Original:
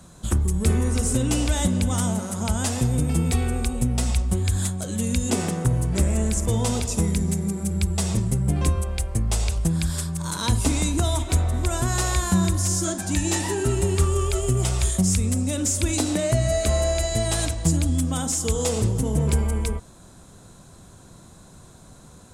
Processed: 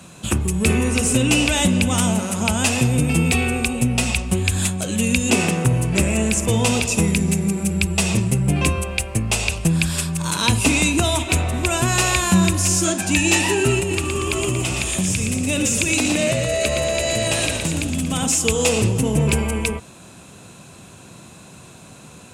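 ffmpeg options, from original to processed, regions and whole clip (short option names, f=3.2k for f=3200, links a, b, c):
-filter_complex "[0:a]asettb=1/sr,asplit=3[a][b][c];[a]atrim=end=13.794[d];[b]atrim=start=13.79:end=18.26,asetpts=PTS-STARTPTS,afade=t=in:d=0.004:c=qsin,afade=t=out:st=4.466:d=0.004:c=qsin,acompressor=threshold=-22dB:ratio=10:attack=3.2:release=140:knee=1:detection=peak,asplit=8[e][f][g][h][i][j][k][l];[f]adelay=117,afreqshift=-69,volume=-5.5dB[m];[g]adelay=234,afreqshift=-138,volume=-10.7dB[n];[h]adelay=351,afreqshift=-207,volume=-15.9dB[o];[i]adelay=468,afreqshift=-276,volume=-21.1dB[p];[j]adelay=585,afreqshift=-345,volume=-26.3dB[q];[k]adelay=702,afreqshift=-414,volume=-31.5dB[r];[l]adelay=819,afreqshift=-483,volume=-36.7dB[s];[e][m][n][o][p][q][r][s]amix=inputs=8:normalize=0,atrim=end_sample=197127[t];[c]atrim=start=18.256[u];[d][t]acrossfade=d=0.004:c1=hsin:c2=qsin[v];[v][u]acrossfade=d=0.004:c1=qsin:c2=hsin,highpass=110,equalizer=f=2.6k:t=o:w=0.39:g=14.5,acontrast=52"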